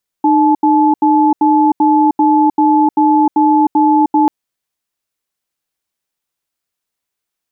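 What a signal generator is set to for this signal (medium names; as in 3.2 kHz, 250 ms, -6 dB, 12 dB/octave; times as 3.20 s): cadence 305 Hz, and 863 Hz, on 0.31 s, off 0.08 s, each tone -10 dBFS 4.04 s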